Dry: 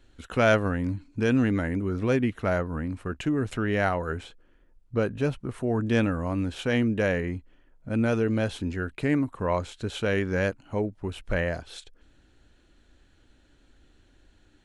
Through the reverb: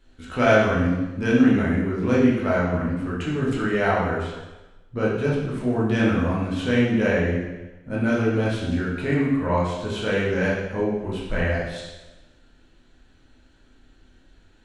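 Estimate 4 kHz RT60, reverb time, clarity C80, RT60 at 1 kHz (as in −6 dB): 1.0 s, 1.1 s, 4.0 dB, 1.1 s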